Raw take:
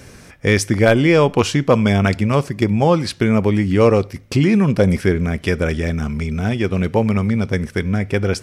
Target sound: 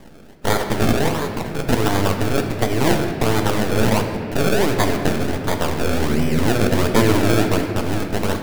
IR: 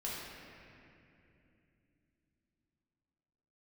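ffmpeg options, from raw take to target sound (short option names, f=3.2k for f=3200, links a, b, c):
-filter_complex "[0:a]aeval=exprs='abs(val(0))':c=same,asettb=1/sr,asplit=3[a][b][c];[a]atrim=end=5.814[d];[b]atrim=start=5.81:end=7.61,asetpts=PTS-STARTPTS,afade=t=in:d=0.004:c=qsin,afade=t=out:st=1.796:d=0.004:c=qsin,tiltshelf=f=1.1k:g=9[e];[c]atrim=start=7.606[f];[d][e]acrossfade=d=0.004:c1=hsin:c2=qsin[g];[g][f]acrossfade=d=0.004:c1=qsin:c2=hsin,acrossover=split=210[h][i];[h]acompressor=threshold=-16dB:ratio=6[j];[j][i]amix=inputs=2:normalize=0,acrusher=samples=31:mix=1:aa=0.000001:lfo=1:lforange=31:lforate=1.4,asettb=1/sr,asplit=3[k][l][m];[k]atrim=end=1.084[n];[l]atrim=start=1.08:end=1.59,asetpts=PTS-STARTPTS,afade=t=in:d=0.004:c=qsin,afade=t=out:st=0.506:d=0.004:c=qsin,acompressor=threshold=-23dB:ratio=5[o];[m]atrim=start=1.586[p];[n][o]acrossfade=d=0.004:c1=hsin:c2=qsin[q];[q][p]acrossfade=d=0.004:c1=qsin:c2=hsin,asplit=2[r][s];[s]highpass=63[t];[1:a]atrim=start_sample=2205[u];[t][u]afir=irnorm=-1:irlink=0,volume=-3dB[v];[r][v]amix=inputs=2:normalize=0,volume=-2.5dB"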